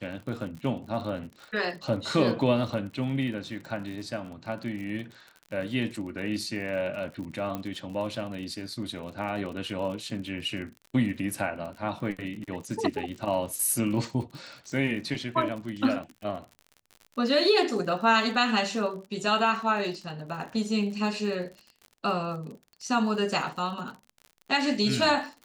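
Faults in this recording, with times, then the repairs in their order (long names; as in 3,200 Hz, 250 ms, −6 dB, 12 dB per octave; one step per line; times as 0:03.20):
surface crackle 52 per second −37 dBFS
0:07.55: click −19 dBFS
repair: click removal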